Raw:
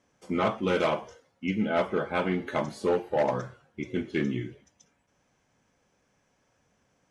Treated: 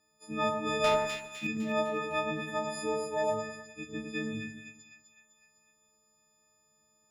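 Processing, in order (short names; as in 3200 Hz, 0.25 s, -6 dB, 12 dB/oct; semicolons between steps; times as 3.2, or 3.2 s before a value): frequency quantiser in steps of 6 st; 0.84–1.47 sample leveller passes 2; split-band echo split 1800 Hz, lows 0.104 s, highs 0.253 s, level -5 dB; gain -9 dB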